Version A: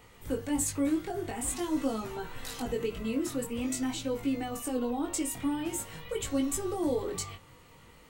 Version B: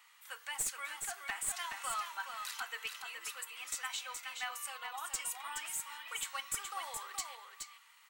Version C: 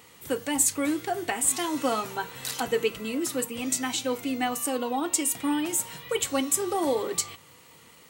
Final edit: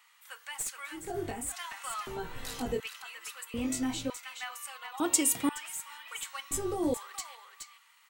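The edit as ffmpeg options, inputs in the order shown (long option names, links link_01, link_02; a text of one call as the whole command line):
ffmpeg -i take0.wav -i take1.wav -i take2.wav -filter_complex "[0:a]asplit=4[link_01][link_02][link_03][link_04];[1:a]asplit=6[link_05][link_06][link_07][link_08][link_09][link_10];[link_05]atrim=end=1.15[link_11];[link_01]atrim=start=0.91:end=1.55[link_12];[link_06]atrim=start=1.31:end=2.072[link_13];[link_02]atrim=start=2.068:end=2.802[link_14];[link_07]atrim=start=2.798:end=3.542[link_15];[link_03]atrim=start=3.538:end=4.102[link_16];[link_08]atrim=start=4.098:end=5.002[link_17];[2:a]atrim=start=4.998:end=5.492[link_18];[link_09]atrim=start=5.488:end=6.512[link_19];[link_04]atrim=start=6.508:end=6.942[link_20];[link_10]atrim=start=6.938[link_21];[link_11][link_12]acrossfade=duration=0.24:curve1=tri:curve2=tri[link_22];[link_22][link_13]acrossfade=duration=0.24:curve1=tri:curve2=tri[link_23];[link_23][link_14]acrossfade=duration=0.004:curve1=hsin:curve2=hsin[link_24];[link_24][link_15]acrossfade=duration=0.004:curve1=hsin:curve2=hsin[link_25];[link_25][link_16]acrossfade=duration=0.004:curve1=hsin:curve2=hsin[link_26];[link_26][link_17]acrossfade=duration=0.004:curve1=hsin:curve2=hsin[link_27];[link_27][link_18]acrossfade=duration=0.004:curve1=hsin:curve2=hsin[link_28];[link_28][link_19]acrossfade=duration=0.004:curve1=hsin:curve2=hsin[link_29];[link_29][link_20]acrossfade=duration=0.004:curve1=hsin:curve2=hsin[link_30];[link_30][link_21]acrossfade=duration=0.004:curve1=hsin:curve2=hsin" out.wav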